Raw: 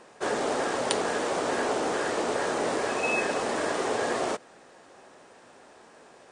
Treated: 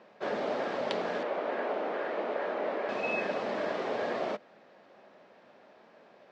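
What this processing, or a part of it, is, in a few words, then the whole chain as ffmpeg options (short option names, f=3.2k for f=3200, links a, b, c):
guitar cabinet: -filter_complex "[0:a]asettb=1/sr,asplit=3[a][b][c];[a]atrim=end=1.234[d];[b]atrim=start=1.23:end=2.89,asetpts=PTS-STARTPTS,afade=t=in:d=0.004:c=qsin,afade=t=out:st=1.656:d=0.004:c=qsin,acrossover=split=240 3200:gain=0.178 1 0.2[e][f][g];[e][f][g]amix=inputs=3:normalize=0[h];[c]atrim=start=2.886[i];[d][h]acrossfade=d=0.004:c1=hsin:c2=qsin[j];[j][i]acrossfade=d=0.004:c1=qsin:c2=hsin,highpass=110,equalizer=f=200:t=q:w=4:g=8,equalizer=f=600:t=q:w=4:g=7,equalizer=f=2.2k:t=q:w=4:g=3,lowpass=f=4.5k:w=0.5412,lowpass=f=4.5k:w=1.3066,volume=-7dB"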